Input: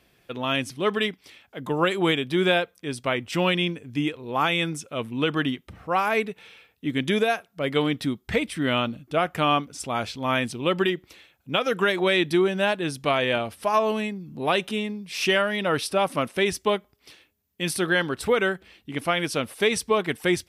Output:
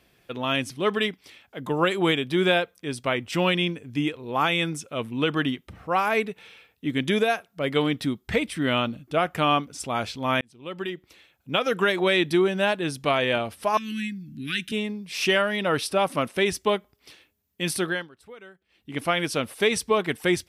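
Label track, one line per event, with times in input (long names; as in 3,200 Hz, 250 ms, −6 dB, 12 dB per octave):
10.410000	11.580000	fade in
13.770000	14.720000	elliptic band-stop filter 290–1,600 Hz
17.780000	18.990000	duck −23 dB, fades 0.31 s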